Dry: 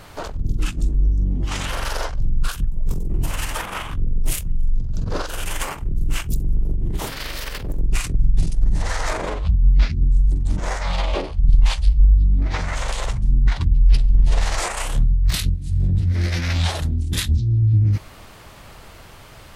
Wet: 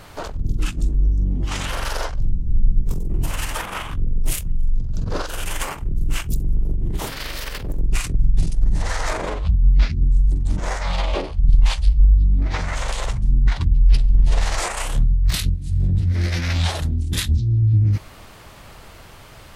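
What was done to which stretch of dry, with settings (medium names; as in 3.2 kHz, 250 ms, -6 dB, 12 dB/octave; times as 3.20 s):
2.33 s: spectral freeze 0.51 s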